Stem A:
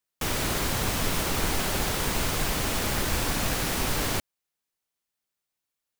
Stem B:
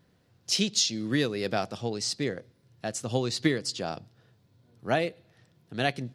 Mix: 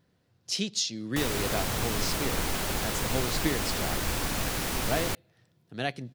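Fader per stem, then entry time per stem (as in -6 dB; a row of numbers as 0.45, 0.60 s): -3.0, -4.0 dB; 0.95, 0.00 s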